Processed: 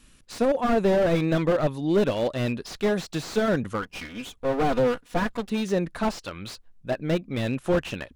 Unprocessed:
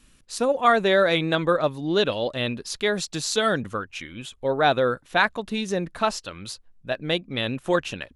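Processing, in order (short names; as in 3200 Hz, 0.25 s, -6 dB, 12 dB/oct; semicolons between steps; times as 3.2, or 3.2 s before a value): 3.82–5.5 minimum comb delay 4.1 ms; slew limiter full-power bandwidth 54 Hz; gain +1.5 dB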